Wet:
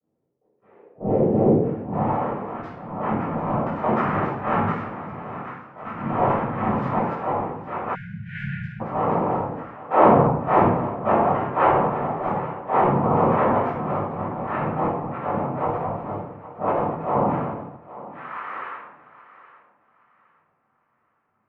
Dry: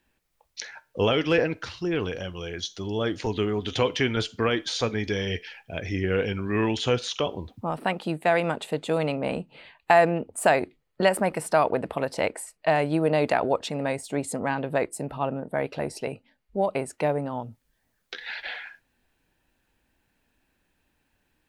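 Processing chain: Wiener smoothing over 9 samples; mistuned SSB -120 Hz 270–2500 Hz; transient shaper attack -10 dB, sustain +9 dB; 4.72–5.85 level quantiser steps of 20 dB; noise vocoder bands 4; low-pass sweep 450 Hz -> 1200 Hz, 1.55–2.14; thinning echo 0.816 s, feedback 26%, high-pass 260 Hz, level -16 dB; reverb RT60 0.75 s, pre-delay 7 ms, DRR -8.5 dB; 7.95–8.81 spectral delete 210–1400 Hz; gain -8 dB

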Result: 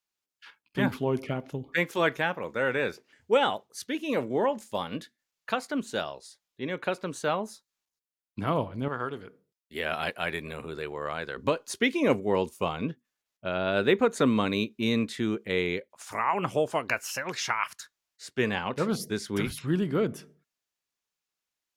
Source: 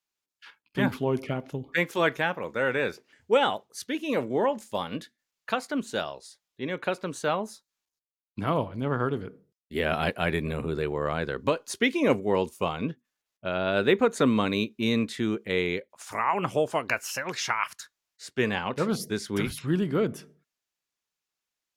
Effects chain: 8.88–11.37 low shelf 450 Hz -11 dB; gain -1 dB

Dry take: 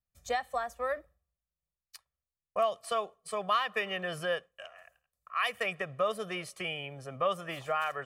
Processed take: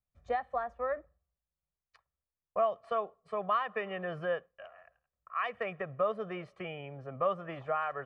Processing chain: LPF 1500 Hz 12 dB/oct

